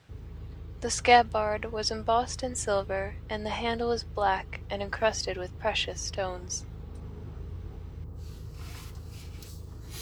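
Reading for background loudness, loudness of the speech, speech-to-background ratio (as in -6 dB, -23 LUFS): -43.5 LUFS, -29.0 LUFS, 14.5 dB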